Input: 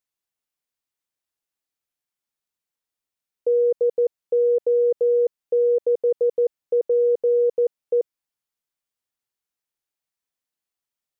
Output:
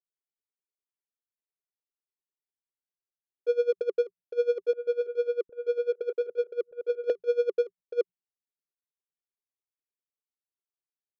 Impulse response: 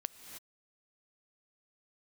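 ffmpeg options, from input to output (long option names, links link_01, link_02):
-filter_complex "[0:a]equalizer=frequency=400:width=3.6:gain=12,bandreject=frequency=60:width_type=h:width=6,bandreject=frequency=120:width_type=h:width=6,bandreject=frequency=180:width_type=h:width=6,asettb=1/sr,asplit=3[link_01][link_02][link_03];[link_01]atrim=end=4.734[link_04];[link_02]atrim=start=4.73:end=7.1,asetpts=PTS-STARTPTS,afade=type=in:duration=0.004:curve=qsin,afade=type=out:start_time=2.366:duration=0.004:curve=qsin,acrossover=split=190|590[link_05][link_06][link_07];[link_06]adelay=140[link_08];[link_05]adelay=760[link_09];[link_09][link_08][link_07]amix=inputs=3:normalize=0,atrim=end_sample=104517[link_10];[link_03]atrim=start=7.096[link_11];[link_04][link_10]acrossfade=duration=0.004:curve1=hsin:curve2=qsin[link_12];[link_12][link_11]acrossfade=duration=0.004:curve1=qsin:curve2=hsin,adynamicsmooth=sensitivity=1:basefreq=600,bass=frequency=250:gain=-6,treble=frequency=4000:gain=13,aeval=exprs='val(0)*pow(10,-21*(0.5-0.5*cos(2*PI*10*n/s))/20)':channel_layout=same,volume=-5.5dB"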